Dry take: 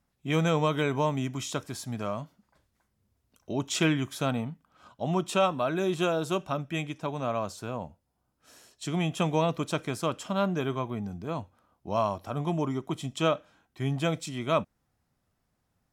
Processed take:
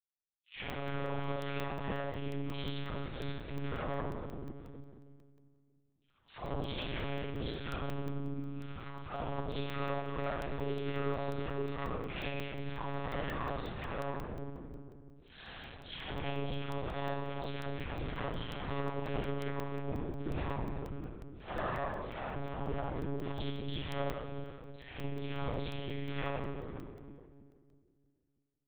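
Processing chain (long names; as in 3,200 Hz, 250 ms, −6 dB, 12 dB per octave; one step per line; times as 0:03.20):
lower of the sound and its delayed copy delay 8.1 ms
downward expander −58 dBFS
automatic gain control gain up to 16 dB
transient designer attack −11 dB, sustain +2 dB
downward compressor 16 to 1, threshold −33 dBFS, peak gain reduction 21.5 dB
all-pass dispersion lows, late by 95 ms, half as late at 950 Hz
time stretch by overlap-add 1.8×, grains 174 ms
bucket-brigade delay 318 ms, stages 1,024, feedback 42%, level −3 dB
dense smooth reverb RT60 1.8 s, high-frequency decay 0.85×, DRR 2 dB
one-pitch LPC vocoder at 8 kHz 140 Hz
regular buffer underruns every 0.18 s, samples 64, zero, from 0:00.70
level −2 dB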